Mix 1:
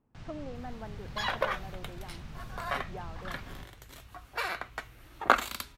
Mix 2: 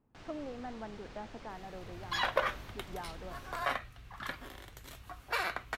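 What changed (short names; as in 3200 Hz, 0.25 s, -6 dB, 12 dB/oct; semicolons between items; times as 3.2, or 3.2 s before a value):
first sound: add resonant low shelf 230 Hz -9 dB, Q 1.5; second sound: entry +0.95 s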